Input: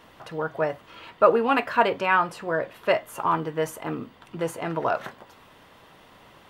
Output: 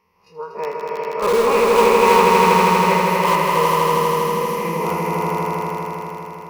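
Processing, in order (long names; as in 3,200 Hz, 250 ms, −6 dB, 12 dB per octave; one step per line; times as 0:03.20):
spectrum smeared in time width 91 ms
EQ curve with evenly spaced ripples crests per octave 0.83, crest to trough 18 dB
noise reduction from a noise print of the clip's start 17 dB
in parallel at −9 dB: wrap-around overflow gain 15 dB
on the sum: echo that builds up and dies away 80 ms, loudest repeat 5, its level −3 dB
on a send at −15 dB: convolution reverb, pre-delay 46 ms
on the sum: level −1 dB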